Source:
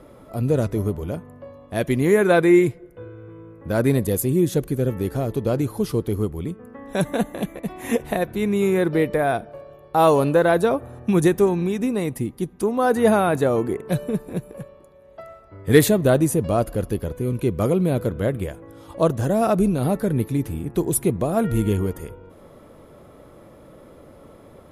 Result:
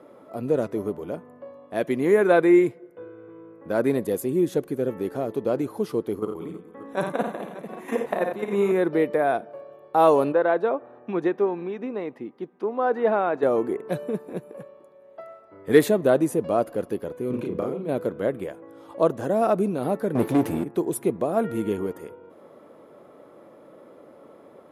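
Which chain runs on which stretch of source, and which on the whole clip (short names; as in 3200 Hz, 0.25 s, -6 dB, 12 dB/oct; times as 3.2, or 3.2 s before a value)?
6.19–8.72 dynamic EQ 1100 Hz, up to +8 dB, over -43 dBFS, Q 1.6 + level quantiser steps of 10 dB + tapped delay 55/87/186/319/580 ms -5.5/-8.5/-15.5/-18.5/-16 dB
10.32–13.43 HPF 390 Hz 6 dB/oct + air absorption 260 m
17.3–17.89 high shelf 8300 Hz -11.5 dB + negative-ratio compressor -23 dBFS, ratio -0.5 + doubler 36 ms -2 dB
20.15–20.64 sample leveller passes 3 + doubler 17 ms -13 dB
whole clip: HPF 280 Hz 12 dB/oct; high shelf 2600 Hz -11 dB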